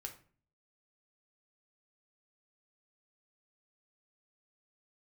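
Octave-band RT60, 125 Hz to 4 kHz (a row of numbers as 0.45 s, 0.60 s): 0.70 s, 0.65 s, 0.45 s, 0.40 s, 0.40 s, 0.30 s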